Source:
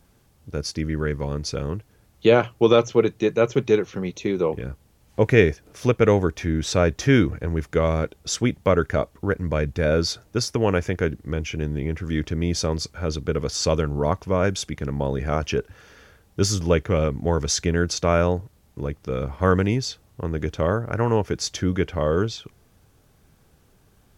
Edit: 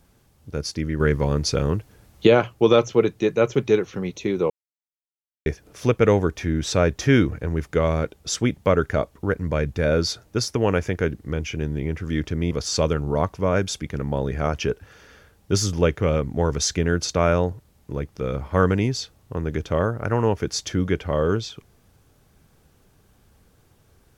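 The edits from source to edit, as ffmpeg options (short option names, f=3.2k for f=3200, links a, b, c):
-filter_complex "[0:a]asplit=6[a][b][c][d][e][f];[a]atrim=end=1.002[g];[b]atrim=start=0.998:end=2.272,asetpts=PTS-STARTPTS,volume=5.5dB[h];[c]atrim=start=2.268:end=4.5,asetpts=PTS-STARTPTS,afade=t=out:st=2.228:d=0.004:c=hsin[i];[d]atrim=start=4.5:end=5.46,asetpts=PTS-STARTPTS,volume=0[j];[e]atrim=start=5.46:end=12.512,asetpts=PTS-STARTPTS,afade=t=in:d=0.004:c=hsin[k];[f]atrim=start=13.388[l];[g][h]acrossfade=d=0.004:c1=hsin:c2=hsin[m];[i][j][k]concat=n=3:v=0:a=1[n];[m][n]acrossfade=d=0.004:c1=hsin:c2=hsin[o];[o][l]acrossfade=d=0.004:c1=hsin:c2=hsin"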